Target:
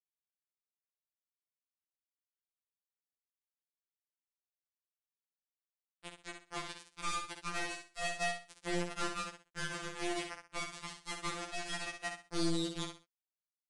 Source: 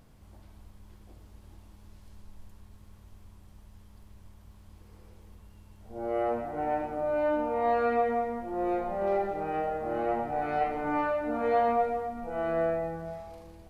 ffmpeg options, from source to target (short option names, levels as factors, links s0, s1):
-filter_complex "[0:a]bandreject=f=1300:w=15,aecho=1:1:6.3:0.48,alimiter=level_in=1.33:limit=0.0631:level=0:latency=1:release=85,volume=0.75,flanger=delay=18:depth=5.5:speed=0.64,acrusher=bits=4:mix=0:aa=0.000001,asplit=2[s0][s1];[s1]aecho=0:1:63|126|189:0.473|0.123|0.032[s2];[s0][s2]amix=inputs=2:normalize=0,aresample=22050,aresample=44100,afftfilt=real='re*2.83*eq(mod(b,8),0)':imag='im*2.83*eq(mod(b,8),0)':win_size=2048:overlap=0.75,volume=1.19"